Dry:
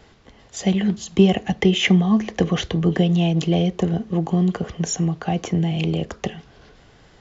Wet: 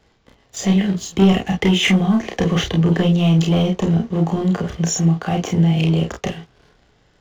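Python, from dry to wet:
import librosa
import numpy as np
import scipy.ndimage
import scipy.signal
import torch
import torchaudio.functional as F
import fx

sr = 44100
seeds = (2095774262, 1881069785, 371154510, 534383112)

p1 = fx.leveller(x, sr, passes=2)
p2 = p1 + fx.room_early_taps(p1, sr, ms=(31, 48), db=(-3.5, -7.0), dry=0)
y = p2 * librosa.db_to_amplitude(-5.5)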